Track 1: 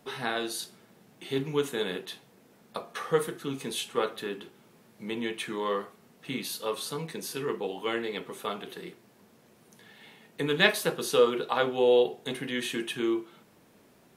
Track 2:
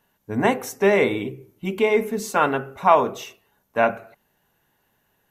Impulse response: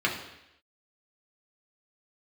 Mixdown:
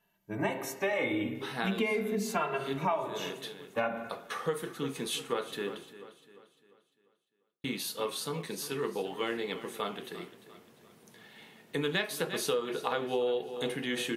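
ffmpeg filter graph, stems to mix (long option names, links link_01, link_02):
-filter_complex "[0:a]adelay=1350,volume=-1dB,asplit=3[link_01][link_02][link_03];[link_01]atrim=end=5.93,asetpts=PTS-STARTPTS,afade=type=out:start_time=5.926:duration=0.004:curve=hsin[link_04];[link_02]atrim=start=5.93:end=7.64,asetpts=PTS-STARTPTS,volume=0[link_05];[link_03]atrim=start=7.64,asetpts=PTS-STARTPTS,afade=type=in:duration=0.004:curve=hsin[link_06];[link_04][link_05][link_06]concat=n=3:v=0:a=1,asplit=2[link_07][link_08];[link_08]volume=-15.5dB[link_09];[1:a]dynaudnorm=framelen=620:gausssize=3:maxgain=11.5dB,asplit=2[link_10][link_11];[link_11]adelay=2.6,afreqshift=-0.4[link_12];[link_10][link_12]amix=inputs=2:normalize=1,volume=-6dB,asplit=3[link_13][link_14][link_15];[link_14]volume=-13.5dB[link_16];[link_15]apad=whole_len=684345[link_17];[link_07][link_17]sidechaincompress=threshold=-30dB:ratio=4:attack=31:release=576[link_18];[2:a]atrim=start_sample=2205[link_19];[link_16][link_19]afir=irnorm=-1:irlink=0[link_20];[link_09]aecho=0:1:348|696|1044|1392|1740|2088:1|0.43|0.185|0.0795|0.0342|0.0147[link_21];[link_18][link_13][link_20][link_21]amix=inputs=4:normalize=0,acompressor=threshold=-27dB:ratio=8"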